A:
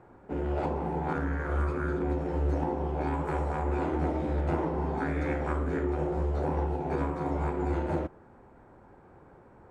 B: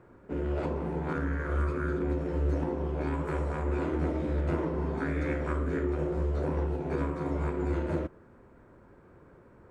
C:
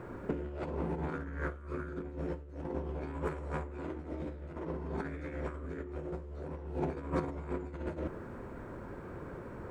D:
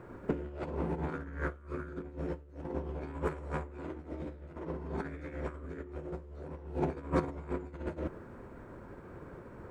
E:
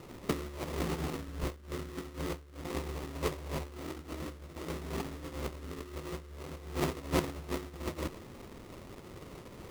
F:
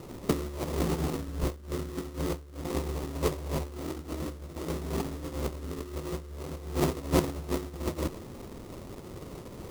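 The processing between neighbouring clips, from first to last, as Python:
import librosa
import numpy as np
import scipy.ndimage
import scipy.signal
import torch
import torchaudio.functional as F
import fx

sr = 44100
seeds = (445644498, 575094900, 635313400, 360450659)

y1 = fx.peak_eq(x, sr, hz=800.0, db=-12.5, octaves=0.31)
y2 = fx.over_compress(y1, sr, threshold_db=-37.0, ratio=-0.5)
y2 = y2 * 10.0 ** (1.5 / 20.0)
y3 = fx.upward_expand(y2, sr, threshold_db=-47.0, expansion=1.5)
y3 = y3 * 10.0 ** (4.0 / 20.0)
y4 = fx.sample_hold(y3, sr, seeds[0], rate_hz=1600.0, jitter_pct=20)
y5 = fx.peak_eq(y4, sr, hz=2100.0, db=-6.0, octaves=2.0)
y5 = y5 * 10.0 ** (6.0 / 20.0)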